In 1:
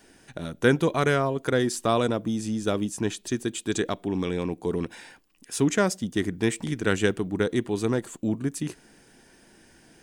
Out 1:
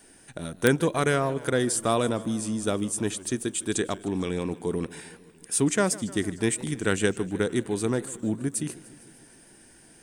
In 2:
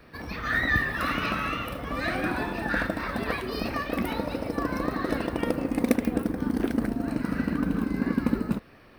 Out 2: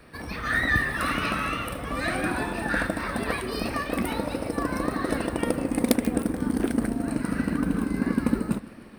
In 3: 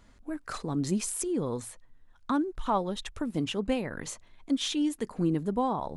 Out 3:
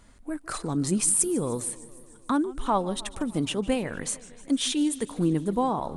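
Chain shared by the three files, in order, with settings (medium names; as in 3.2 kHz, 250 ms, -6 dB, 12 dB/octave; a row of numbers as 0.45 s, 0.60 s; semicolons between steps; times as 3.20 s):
peaking EQ 9 kHz +13 dB 0.36 oct; integer overflow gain 6.5 dB; modulated delay 152 ms, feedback 68%, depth 171 cents, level -19.5 dB; normalise loudness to -27 LUFS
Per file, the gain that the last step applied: -1.0 dB, +1.0 dB, +3.0 dB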